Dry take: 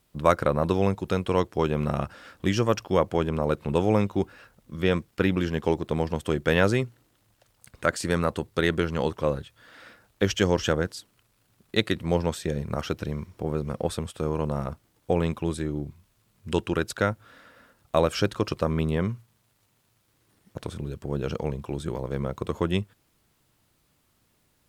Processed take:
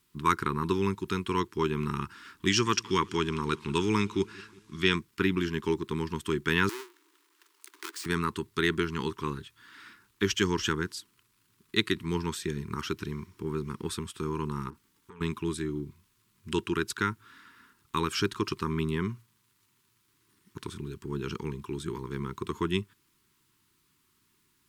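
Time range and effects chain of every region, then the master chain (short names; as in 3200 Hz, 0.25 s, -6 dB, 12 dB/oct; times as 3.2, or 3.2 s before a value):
2.47–4.96 LPF 6900 Hz + high shelf 2600 Hz +11.5 dB + feedback echo 0.182 s, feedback 54%, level -23 dB
6.69–8.06 half-waves squared off + steep high-pass 300 Hz 72 dB/oct + compressor 4:1, threshold -36 dBFS
14.7–15.21 comb 4.4 ms, depth 35% + compressor 8:1, threshold -34 dBFS + core saturation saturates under 860 Hz
whole clip: Chebyshev band-stop 400–950 Hz, order 3; low shelf 120 Hz -11.5 dB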